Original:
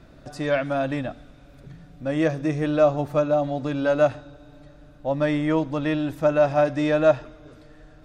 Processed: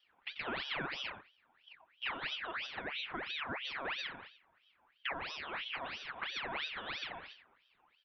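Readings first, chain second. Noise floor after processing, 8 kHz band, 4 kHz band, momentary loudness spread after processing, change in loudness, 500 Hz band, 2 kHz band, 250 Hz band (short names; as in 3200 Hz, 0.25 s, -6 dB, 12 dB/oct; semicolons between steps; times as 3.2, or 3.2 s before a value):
-73 dBFS, n/a, +1.5 dB, 15 LU, -17.0 dB, -28.5 dB, -6.5 dB, -27.5 dB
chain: steep low-pass 2700 Hz 96 dB/oct; gate -38 dBFS, range -22 dB; limiter -17 dBFS, peak gain reduction 10 dB; bell 320 Hz -12 dB 0.44 oct; compressor 5:1, threshold -39 dBFS, peak gain reduction 15.5 dB; notches 50/100/150 Hz; notch comb 310 Hz; echo 88 ms -10 dB; ring modulator with a swept carrier 2000 Hz, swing 60%, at 3 Hz; gain +4.5 dB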